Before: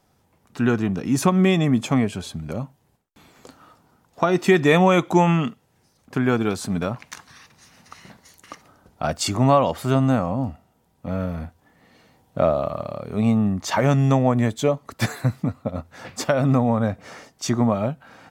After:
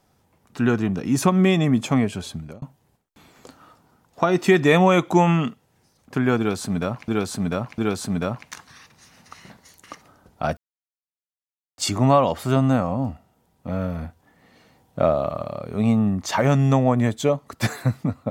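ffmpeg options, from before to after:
-filter_complex "[0:a]asplit=5[s0][s1][s2][s3][s4];[s0]atrim=end=2.62,asetpts=PTS-STARTPTS,afade=t=out:st=2.35:d=0.27[s5];[s1]atrim=start=2.62:end=7.082,asetpts=PTS-STARTPTS,afade=t=in:d=0.004:c=hsin[s6];[s2]atrim=start=6.378:end=7.082[s7];[s3]atrim=start=6.378:end=9.17,asetpts=PTS-STARTPTS,afade=t=out:st=2.788:d=0.004:c=hsin,apad=pad_dur=1.21[s8];[s4]atrim=start=9.17,asetpts=PTS-STARTPTS,afade=t=in:d=0.004:c=hsin[s9];[s5][s6]concat=n=2:v=0:a=1[s10];[s10][s7]acrossfade=d=0.004:c1=hsin:c2=hsin[s11];[s8][s9]concat=n=2:v=0:a=1[s12];[s11][s12]acrossfade=d=0.004:c1=hsin:c2=hsin"

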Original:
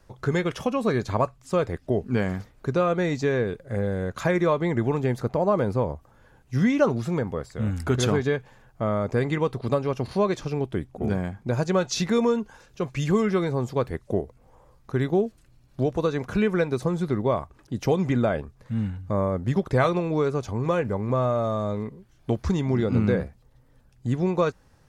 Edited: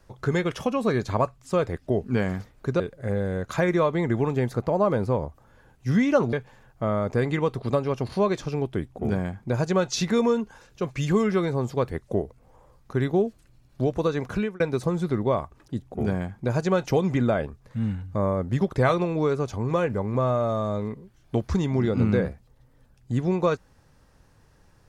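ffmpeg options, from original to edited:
-filter_complex "[0:a]asplit=6[s0][s1][s2][s3][s4][s5];[s0]atrim=end=2.802[s6];[s1]atrim=start=3.468:end=7.002[s7];[s2]atrim=start=8.318:end=16.59,asetpts=PTS-STARTPTS,afade=t=out:st=7.992:d=0.28[s8];[s3]atrim=start=16.59:end=17.812,asetpts=PTS-STARTPTS,afade=t=in:d=0.004:c=hsin[s9];[s4]atrim=start=10.848:end=11.892[s10];[s5]atrim=start=17.808[s11];[s6][s7]acrossfade=d=0.004:c1=hsin:c2=hsin[s12];[s8][s9]concat=n=2:v=0:a=1[s13];[s12][s13]acrossfade=d=0.004:c1=hsin:c2=hsin[s14];[s14][s10]acrossfade=d=0.004:c1=hsin:c2=hsin[s15];[s15][s11]acrossfade=d=0.004:c1=hsin:c2=hsin"

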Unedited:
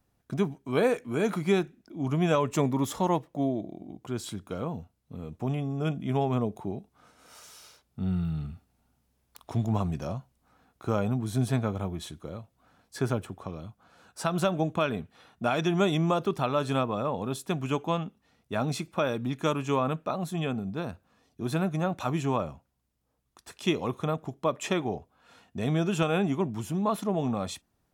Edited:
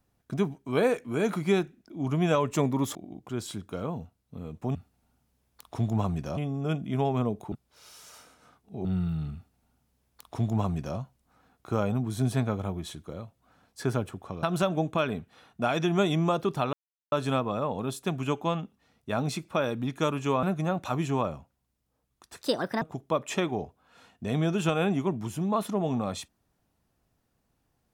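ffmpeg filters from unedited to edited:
-filter_complex "[0:a]asplit=11[s0][s1][s2][s3][s4][s5][s6][s7][s8][s9][s10];[s0]atrim=end=2.952[s11];[s1]atrim=start=3.728:end=5.532[s12];[s2]atrim=start=8.508:end=10.132[s13];[s3]atrim=start=5.528:end=6.682[s14];[s4]atrim=start=6.678:end=8.012,asetpts=PTS-STARTPTS,areverse[s15];[s5]atrim=start=8.008:end=13.592[s16];[s6]atrim=start=14.248:end=16.55,asetpts=PTS-STARTPTS,afade=t=out:st=2.298:d=0.004:c=hsin,apad=pad_dur=0.39[s17];[s7]atrim=start=16.55:end=19.862,asetpts=PTS-STARTPTS,afade=t=in:d=0.004:c=hsin[s18];[s8]atrim=start=21.578:end=23.564[s19];[s9]atrim=start=23.56:end=24.15,asetpts=PTS-STARTPTS,asetrate=63945,aresample=44100,atrim=end_sample=17944,asetpts=PTS-STARTPTS[s20];[s10]atrim=start=24.146[s21];[s11][s12]acrossfade=d=0.004:c1=hsin:c2=hsin[s22];[s22][s13]acrossfade=d=0.004:c1=hsin:c2=hsin[s23];[s23][s14]acrossfade=d=0.004:c1=hsin:c2=hsin[s24];[s24][s15]acrossfade=d=0.004:c1=hsin:c2=hsin[s25];[s25][s16]acrossfade=d=0.004:c1=hsin:c2=hsin[s26];[s17][s18]concat=n=2:v=0:a=1[s27];[s26][s27]acrossfade=d=0.004:c1=hsin:c2=hsin[s28];[s28][s19]acrossfade=d=0.004:c1=hsin:c2=hsin[s29];[s29][s20]acrossfade=d=0.004:c1=hsin:c2=hsin[s30];[s30][s21]acrossfade=d=0.004:c1=hsin:c2=hsin"

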